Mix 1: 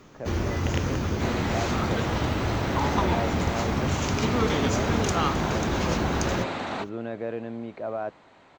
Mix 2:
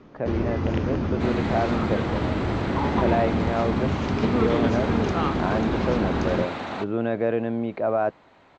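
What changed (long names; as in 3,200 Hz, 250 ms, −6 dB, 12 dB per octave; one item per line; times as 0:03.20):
speech +8.5 dB
first sound: add drawn EQ curve 140 Hz 0 dB, 220 Hz +5 dB, 4,900 Hz −6 dB, 11,000 Hz −24 dB, 15,000 Hz −12 dB
master: add high-frequency loss of the air 61 metres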